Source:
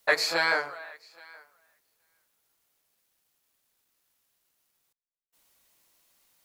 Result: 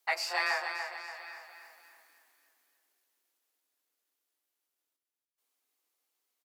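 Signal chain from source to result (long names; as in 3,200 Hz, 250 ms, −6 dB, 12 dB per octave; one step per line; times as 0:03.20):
source passing by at 0:01.77, 10 m/s, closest 3.2 metres
high-pass filter 77 Hz
low-shelf EQ 160 Hz +7 dB
mains-hum notches 50/100/150 Hz
frequency shifter +190 Hz
on a send: repeating echo 288 ms, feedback 47%, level −7.5 dB
on the sum: level +6.5 dB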